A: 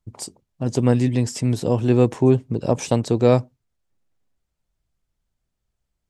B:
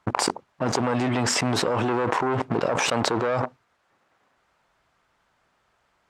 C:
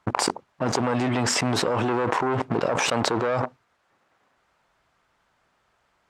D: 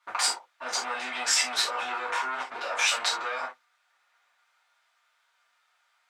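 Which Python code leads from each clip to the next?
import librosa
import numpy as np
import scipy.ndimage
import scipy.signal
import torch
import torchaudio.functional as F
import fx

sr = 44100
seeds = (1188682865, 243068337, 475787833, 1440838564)

y1 = fx.leveller(x, sr, passes=3)
y1 = fx.bandpass_q(y1, sr, hz=1200.0, q=1.2)
y1 = fx.env_flatten(y1, sr, amount_pct=100)
y1 = y1 * librosa.db_to_amplitude(-8.5)
y2 = y1
y3 = scipy.signal.sosfilt(scipy.signal.butter(2, 1400.0, 'highpass', fs=sr, output='sos'), y2)
y3 = fx.rev_gated(y3, sr, seeds[0], gate_ms=100, shape='falling', drr_db=-7.5)
y3 = y3 * librosa.db_to_amplitude(-6.0)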